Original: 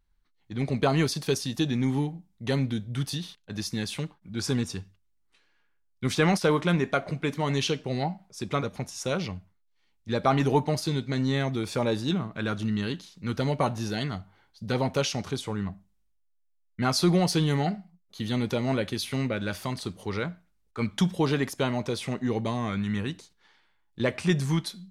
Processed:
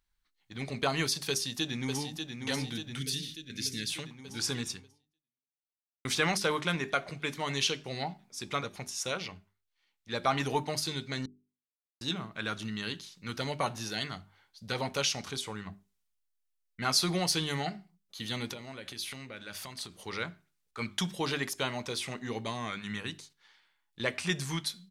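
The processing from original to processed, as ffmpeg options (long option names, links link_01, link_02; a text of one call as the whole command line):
ffmpeg -i in.wav -filter_complex "[0:a]asplit=2[link_01][link_02];[link_02]afade=type=in:start_time=1.29:duration=0.01,afade=type=out:start_time=2.44:duration=0.01,aecho=0:1:590|1180|1770|2360|2950|3540|4130|4720|5310|5900|6490:0.501187|0.350831|0.245582|0.171907|0.120335|0.0842345|0.0589642|0.0412749|0.0288924|0.0202247|0.0141573[link_03];[link_01][link_03]amix=inputs=2:normalize=0,asettb=1/sr,asplit=3[link_04][link_05][link_06];[link_04]atrim=end=2.994[link_07];[link_05]atrim=start=2.99:end=3.9,asetpts=PTS-STARTPTS,afade=type=in:duration=0.004:curve=qsin,afade=type=out:start_time=0.906:duration=0.004:curve=qsin,asuperstop=centerf=860:order=4:qfactor=0.66[link_08];[link_06]atrim=start=3.896[link_09];[link_07][link_08]acrossfade=duration=0.004:curve1=hsin:curve2=qsin[link_10];[link_10][link_09]acrossfade=duration=0.004:curve1=qsin:curve2=hsin,asettb=1/sr,asplit=3[link_11][link_12][link_13];[link_11]atrim=end=9.114[link_14];[link_12]atrim=start=9.11:end=10.14,asetpts=PTS-STARTPTS,afade=type=in:duration=0.004:curve=qsin,afade=type=out:start_time=1.026:duration=0.004:curve=qsin,bass=frequency=250:gain=-4,treble=frequency=4000:gain=-4[link_15];[link_13]atrim=start=10.136[link_16];[link_14][link_15]acrossfade=duration=0.004:curve1=hsin:curve2=qsin[link_17];[link_17][link_16]acrossfade=duration=0.004:curve1=qsin:curve2=hsin,asplit=3[link_18][link_19][link_20];[link_18]afade=type=out:start_time=18.52:duration=0.02[link_21];[link_19]acompressor=threshold=-34dB:ratio=5:attack=3.2:release=140:knee=1:detection=peak,afade=type=in:start_time=18.52:duration=0.02,afade=type=out:start_time=19.96:duration=0.02[link_22];[link_20]afade=type=in:start_time=19.96:duration=0.02[link_23];[link_21][link_22][link_23]amix=inputs=3:normalize=0,asplit=4[link_24][link_25][link_26][link_27];[link_24]atrim=end=6.05,asetpts=PTS-STARTPTS,afade=type=out:start_time=4.71:duration=1.34:curve=exp[link_28];[link_25]atrim=start=6.05:end=11.26,asetpts=PTS-STARTPTS,afade=type=in:duration=0.004:curve=hsin,afade=type=out:start_time=5.206:duration=0.004:curve=hsin[link_29];[link_26]atrim=start=11.26:end=12.01,asetpts=PTS-STARTPTS,volume=0[link_30];[link_27]atrim=start=12.01,asetpts=PTS-STARTPTS,afade=type=in:duration=0.004:curve=hsin[link_31];[link_28][link_29][link_30][link_31]concat=n=4:v=0:a=1,tiltshelf=frequency=970:gain=-6,bandreject=frequency=50:width_type=h:width=6,bandreject=frequency=100:width_type=h:width=6,bandreject=frequency=150:width_type=h:width=6,bandreject=frequency=200:width_type=h:width=6,bandreject=frequency=250:width_type=h:width=6,bandreject=frequency=300:width_type=h:width=6,bandreject=frequency=350:width_type=h:width=6,bandreject=frequency=400:width_type=h:width=6,volume=-4dB" out.wav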